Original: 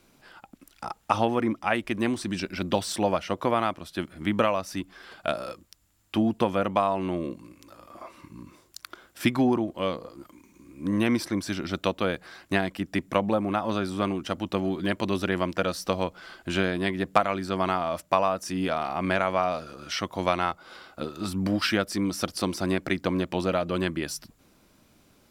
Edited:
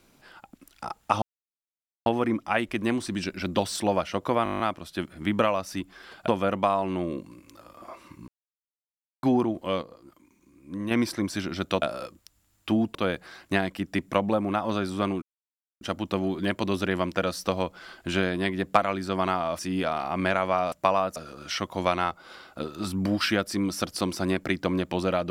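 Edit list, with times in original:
1.22 insert silence 0.84 s
3.6 stutter 0.02 s, 9 plays
5.28–6.41 move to 11.95
8.41–9.36 mute
9.95–11.04 gain -7 dB
14.22 insert silence 0.59 s
18–18.44 move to 19.57

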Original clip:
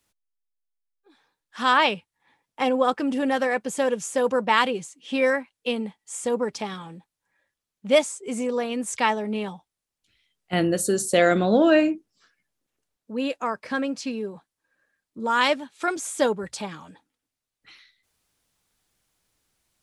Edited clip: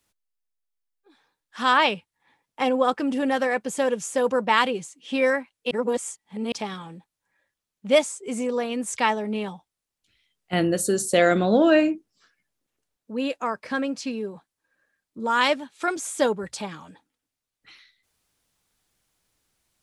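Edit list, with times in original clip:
5.71–6.52 reverse

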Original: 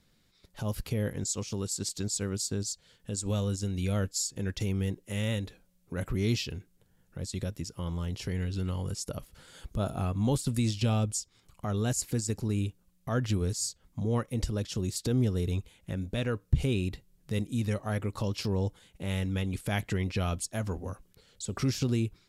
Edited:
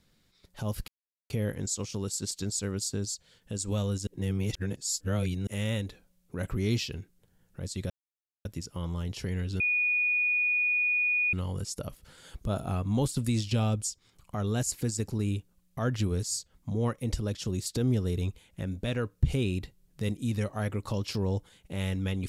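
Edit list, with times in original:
0.88 insert silence 0.42 s
3.65–5.05 reverse
7.48 insert silence 0.55 s
8.63 add tone 2460 Hz -23.5 dBFS 1.73 s

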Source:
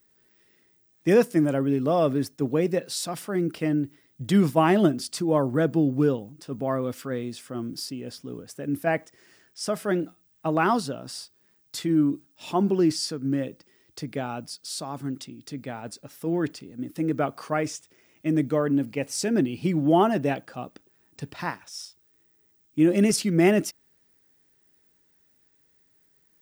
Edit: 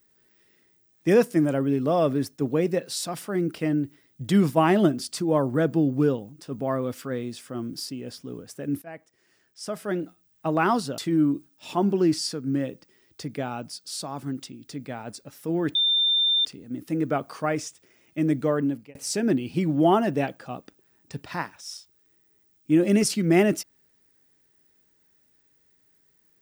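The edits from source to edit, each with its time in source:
8.82–10.47 fade in, from -19.5 dB
10.98–11.76 cut
16.53 add tone 3590 Hz -18.5 dBFS 0.70 s
18.67–19.03 fade out

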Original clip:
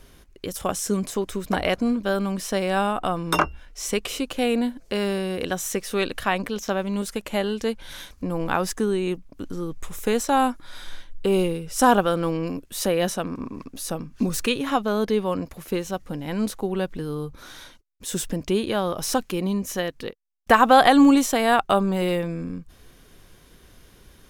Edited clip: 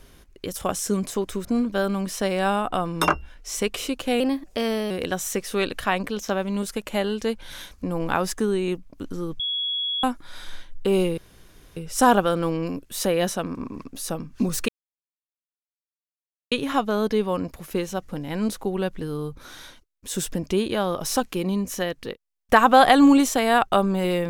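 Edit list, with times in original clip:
1.45–1.76 cut
4.51–5.3 speed 112%
9.79–10.43 bleep 3350 Hz -23.5 dBFS
11.57 insert room tone 0.59 s
14.49 insert silence 1.83 s

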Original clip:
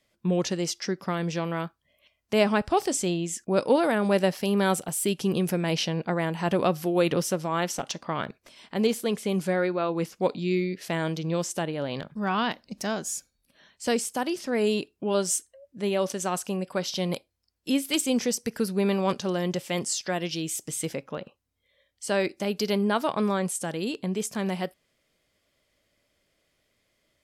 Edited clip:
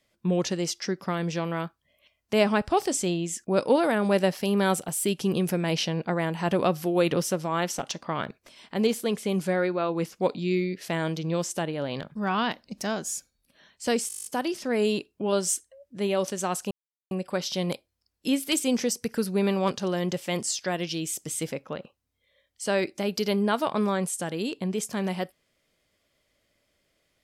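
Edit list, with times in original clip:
14.08 stutter 0.02 s, 10 plays
16.53 insert silence 0.40 s

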